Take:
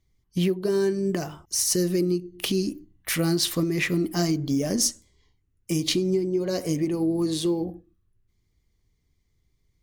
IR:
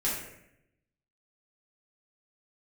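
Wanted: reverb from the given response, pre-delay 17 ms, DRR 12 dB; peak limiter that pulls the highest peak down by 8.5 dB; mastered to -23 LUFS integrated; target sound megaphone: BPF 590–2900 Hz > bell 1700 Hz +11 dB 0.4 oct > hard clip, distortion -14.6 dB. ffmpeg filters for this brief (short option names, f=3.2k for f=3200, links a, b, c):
-filter_complex "[0:a]alimiter=limit=-18dB:level=0:latency=1,asplit=2[a][b];[1:a]atrim=start_sample=2205,adelay=17[c];[b][c]afir=irnorm=-1:irlink=0,volume=-19.5dB[d];[a][d]amix=inputs=2:normalize=0,highpass=590,lowpass=2.9k,equalizer=f=1.7k:t=o:w=0.4:g=11,asoftclip=type=hard:threshold=-27dB,volume=12.5dB"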